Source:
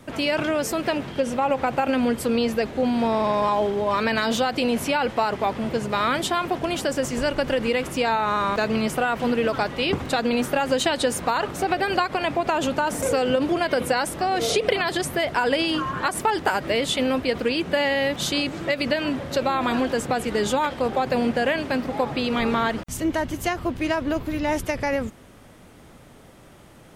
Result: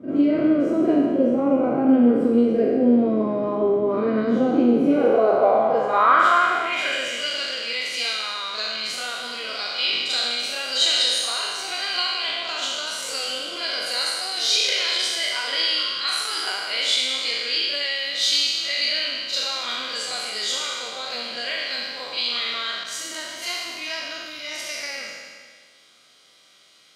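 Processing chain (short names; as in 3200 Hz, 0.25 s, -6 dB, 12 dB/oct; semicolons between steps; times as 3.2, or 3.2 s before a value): spectral trails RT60 1.81 s; notch comb 890 Hz; on a send: reverse echo 42 ms -6.5 dB; on the sum: band-pass sweep 300 Hz -> 4300 Hz, 4.81–7.58; gain +7.5 dB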